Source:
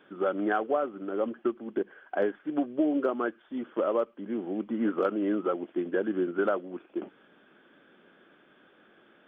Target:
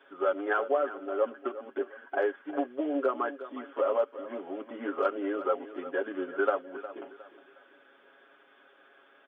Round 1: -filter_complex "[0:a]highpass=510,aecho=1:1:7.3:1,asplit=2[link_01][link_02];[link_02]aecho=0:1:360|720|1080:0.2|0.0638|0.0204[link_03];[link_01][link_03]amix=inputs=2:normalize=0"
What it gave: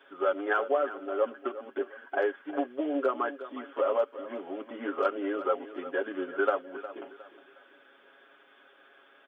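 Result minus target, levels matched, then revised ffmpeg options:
4,000 Hz band +3.0 dB
-filter_complex "[0:a]highpass=510,highshelf=frequency=3000:gain=-6,aecho=1:1:7.3:1,asplit=2[link_01][link_02];[link_02]aecho=0:1:360|720|1080:0.2|0.0638|0.0204[link_03];[link_01][link_03]amix=inputs=2:normalize=0"

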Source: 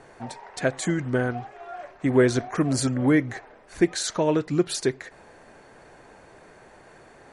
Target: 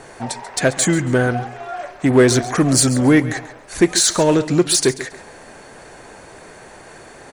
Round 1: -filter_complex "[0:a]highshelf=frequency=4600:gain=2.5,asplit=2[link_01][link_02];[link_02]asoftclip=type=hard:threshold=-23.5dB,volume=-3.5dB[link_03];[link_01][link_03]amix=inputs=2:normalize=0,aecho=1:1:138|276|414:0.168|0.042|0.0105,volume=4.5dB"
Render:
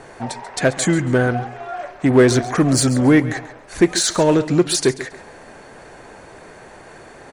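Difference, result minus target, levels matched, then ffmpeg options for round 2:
8,000 Hz band −4.0 dB
-filter_complex "[0:a]highshelf=frequency=4600:gain=10,asplit=2[link_01][link_02];[link_02]asoftclip=type=hard:threshold=-23.5dB,volume=-3.5dB[link_03];[link_01][link_03]amix=inputs=2:normalize=0,aecho=1:1:138|276|414:0.168|0.042|0.0105,volume=4.5dB"

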